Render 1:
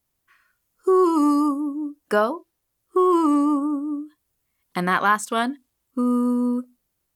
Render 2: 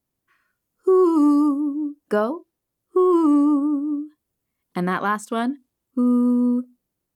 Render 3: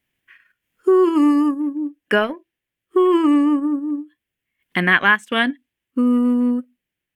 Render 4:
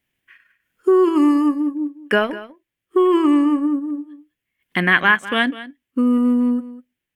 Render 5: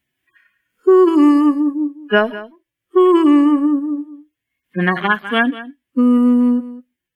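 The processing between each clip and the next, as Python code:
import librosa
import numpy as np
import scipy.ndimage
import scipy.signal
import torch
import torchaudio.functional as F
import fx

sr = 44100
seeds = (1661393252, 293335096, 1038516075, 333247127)

y1 = fx.peak_eq(x, sr, hz=250.0, db=9.5, octaves=2.8)
y1 = y1 * librosa.db_to_amplitude(-6.5)
y2 = fx.transient(y1, sr, attack_db=1, sustain_db=-8)
y2 = fx.band_shelf(y2, sr, hz=2300.0, db=16.0, octaves=1.3)
y2 = y2 * librosa.db_to_amplitude(1.5)
y3 = y2 + 10.0 ** (-16.0 / 20.0) * np.pad(y2, (int(201 * sr / 1000.0), 0))[:len(y2)]
y4 = fx.hpss_only(y3, sr, part='harmonic')
y4 = y4 * librosa.db_to_amplitude(4.0)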